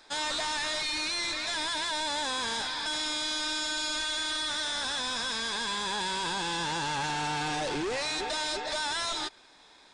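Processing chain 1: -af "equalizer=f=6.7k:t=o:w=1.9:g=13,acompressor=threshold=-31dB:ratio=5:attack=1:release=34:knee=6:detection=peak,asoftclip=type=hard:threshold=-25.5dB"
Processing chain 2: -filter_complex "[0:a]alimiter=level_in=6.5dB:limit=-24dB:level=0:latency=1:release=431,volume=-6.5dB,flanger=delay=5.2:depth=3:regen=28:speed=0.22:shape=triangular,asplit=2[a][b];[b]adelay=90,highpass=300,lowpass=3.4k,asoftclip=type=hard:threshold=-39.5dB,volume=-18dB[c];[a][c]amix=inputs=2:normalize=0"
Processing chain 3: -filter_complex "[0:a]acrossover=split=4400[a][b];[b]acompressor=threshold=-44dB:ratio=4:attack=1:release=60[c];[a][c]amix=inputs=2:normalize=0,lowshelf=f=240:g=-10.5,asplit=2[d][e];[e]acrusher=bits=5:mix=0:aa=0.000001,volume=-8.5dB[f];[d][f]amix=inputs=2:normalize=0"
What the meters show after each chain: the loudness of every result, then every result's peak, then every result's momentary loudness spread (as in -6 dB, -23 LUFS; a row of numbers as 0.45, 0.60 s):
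-30.5, -38.0, -28.5 LUFS; -25.5, -31.0, -21.5 dBFS; 2, 2, 1 LU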